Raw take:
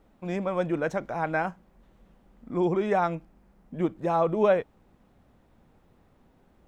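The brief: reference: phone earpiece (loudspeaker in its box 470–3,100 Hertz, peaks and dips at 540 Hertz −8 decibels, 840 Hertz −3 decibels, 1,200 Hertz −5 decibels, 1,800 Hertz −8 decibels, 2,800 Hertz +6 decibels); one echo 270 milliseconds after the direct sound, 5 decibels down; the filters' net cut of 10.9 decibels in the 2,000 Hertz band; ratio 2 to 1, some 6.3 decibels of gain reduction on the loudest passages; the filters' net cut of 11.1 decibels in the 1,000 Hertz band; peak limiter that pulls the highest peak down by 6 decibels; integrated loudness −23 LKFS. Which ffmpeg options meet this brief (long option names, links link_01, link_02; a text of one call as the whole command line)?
ffmpeg -i in.wav -af "equalizer=frequency=1000:width_type=o:gain=-8.5,equalizer=frequency=2000:width_type=o:gain=-6.5,acompressor=threshold=-31dB:ratio=2,alimiter=level_in=2.5dB:limit=-24dB:level=0:latency=1,volume=-2.5dB,highpass=470,equalizer=frequency=540:width_type=q:width=4:gain=-8,equalizer=frequency=840:width_type=q:width=4:gain=-3,equalizer=frequency=1200:width_type=q:width=4:gain=-5,equalizer=frequency=1800:width_type=q:width=4:gain=-8,equalizer=frequency=2800:width_type=q:width=4:gain=6,lowpass=frequency=3100:width=0.5412,lowpass=frequency=3100:width=1.3066,aecho=1:1:270:0.562,volume=20.5dB" out.wav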